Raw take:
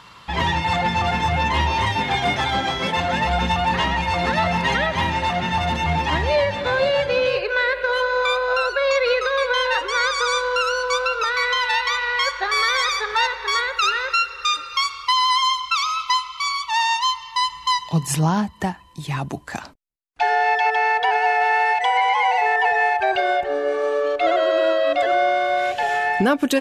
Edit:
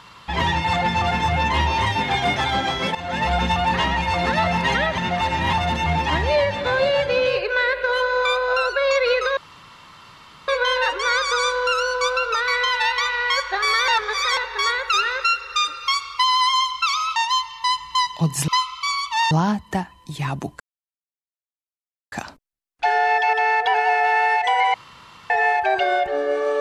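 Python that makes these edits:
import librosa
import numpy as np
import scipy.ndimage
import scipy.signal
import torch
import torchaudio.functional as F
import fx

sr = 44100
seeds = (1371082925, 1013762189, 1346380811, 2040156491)

y = fx.edit(x, sr, fx.fade_in_from(start_s=2.95, length_s=0.32, floor_db=-14.5),
    fx.reverse_span(start_s=4.98, length_s=0.55),
    fx.insert_room_tone(at_s=9.37, length_s=1.11),
    fx.reverse_span(start_s=12.77, length_s=0.49),
    fx.move(start_s=16.05, length_s=0.83, to_s=18.2),
    fx.insert_silence(at_s=19.49, length_s=1.52),
    fx.room_tone_fill(start_s=22.11, length_s=0.56), tone=tone)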